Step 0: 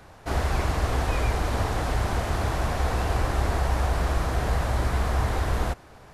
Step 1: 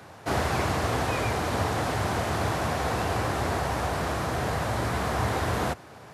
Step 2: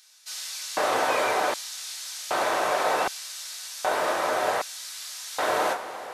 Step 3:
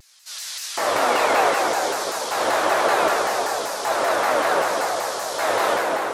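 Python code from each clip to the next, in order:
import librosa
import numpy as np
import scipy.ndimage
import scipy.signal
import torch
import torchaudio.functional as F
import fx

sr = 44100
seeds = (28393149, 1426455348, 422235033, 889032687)

y1 = fx.rider(x, sr, range_db=3, speed_s=2.0)
y1 = scipy.signal.sosfilt(scipy.signal.butter(4, 93.0, 'highpass', fs=sr, output='sos'), y1)
y1 = y1 * librosa.db_to_amplitude(1.5)
y2 = fx.rev_double_slope(y1, sr, seeds[0], early_s=0.2, late_s=4.9, knee_db=-21, drr_db=1.5)
y2 = fx.filter_lfo_highpass(y2, sr, shape='square', hz=0.65, low_hz=550.0, high_hz=4900.0, q=1.3)
y2 = y2 * librosa.db_to_amplitude(1.5)
y3 = fx.rev_plate(y2, sr, seeds[1], rt60_s=4.8, hf_ratio=0.55, predelay_ms=0, drr_db=-4.5)
y3 = fx.vibrato_shape(y3, sr, shape='saw_down', rate_hz=5.2, depth_cents=250.0)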